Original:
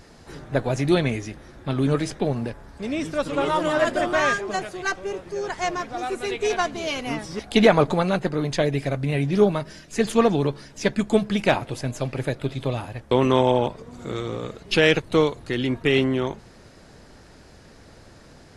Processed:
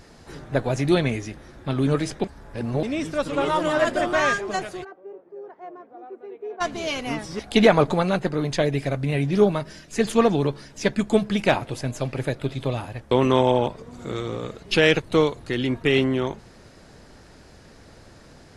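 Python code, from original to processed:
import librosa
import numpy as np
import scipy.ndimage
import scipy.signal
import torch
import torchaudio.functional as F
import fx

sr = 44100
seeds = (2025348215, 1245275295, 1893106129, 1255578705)

y = fx.ladder_bandpass(x, sr, hz=490.0, resonance_pct=20, at=(4.83, 6.6), fade=0.02)
y = fx.edit(y, sr, fx.reverse_span(start_s=2.24, length_s=0.59), tone=tone)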